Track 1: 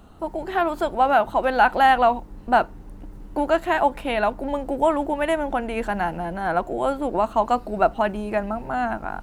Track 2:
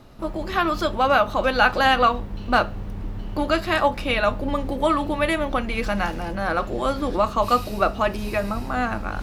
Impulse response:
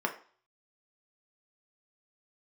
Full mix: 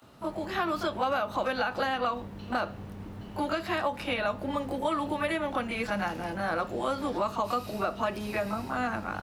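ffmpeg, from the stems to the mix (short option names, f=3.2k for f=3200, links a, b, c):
-filter_complex "[0:a]highpass=1.1k,acompressor=threshold=-31dB:ratio=6,volume=-3.5dB[a];[1:a]alimiter=limit=-10.5dB:level=0:latency=1:release=129,adelay=20,volume=-5dB[b];[a][b]amix=inputs=2:normalize=0,highpass=99,acrossover=split=900|4300[c][d][e];[c]acompressor=threshold=-28dB:ratio=4[f];[d]acompressor=threshold=-31dB:ratio=4[g];[e]acompressor=threshold=-49dB:ratio=4[h];[f][g][h]amix=inputs=3:normalize=0"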